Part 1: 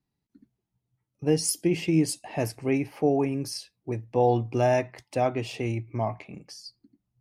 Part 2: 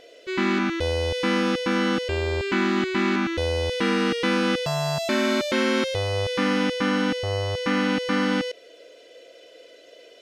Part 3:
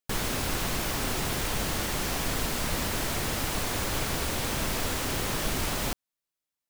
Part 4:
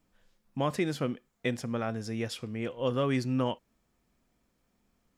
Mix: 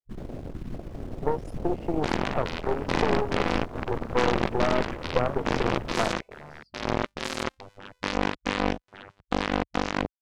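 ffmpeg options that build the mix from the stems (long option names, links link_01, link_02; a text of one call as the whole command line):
ffmpeg -i stem1.wav -i stem2.wav -i stem3.wav -i stem4.wav -filter_complex "[0:a]lowshelf=frequency=330:width_type=q:width=3:gain=-10.5,acompressor=threshold=-26dB:ratio=10,volume=1.5dB[link_01];[1:a]bandreject=frequency=1300:width=27,bandreject=frequency=45.09:width_type=h:width=4,bandreject=frequency=90.18:width_type=h:width=4,bandreject=frequency=135.27:width_type=h:width=4,bandreject=frequency=180.36:width_type=h:width=4,bandreject=frequency=225.45:width_type=h:width=4,bandreject=frequency=270.54:width_type=h:width=4,acrusher=bits=2:mix=0:aa=0.5,adelay=1650,volume=-1dB[link_02];[2:a]volume=-3.5dB[link_03];[3:a]asoftclip=type=tanh:threshold=-22.5dB,aeval=exprs='val(0)+0.00224*(sin(2*PI*50*n/s)+sin(2*PI*2*50*n/s)/2+sin(2*PI*3*50*n/s)/3+sin(2*PI*4*50*n/s)/4+sin(2*PI*5*50*n/s)/5)':channel_layout=same,adelay=2300,volume=-8dB[link_04];[link_01][link_02][link_03][link_04]amix=inputs=4:normalize=0,afwtdn=0.0316,lowpass=frequency=1700:poles=1,aeval=exprs='0.398*(cos(1*acos(clip(val(0)/0.398,-1,1)))-cos(1*PI/2))+0.0355*(cos(6*acos(clip(val(0)/0.398,-1,1)))-cos(6*PI/2))+0.1*(cos(8*acos(clip(val(0)/0.398,-1,1)))-cos(8*PI/2))':channel_layout=same" out.wav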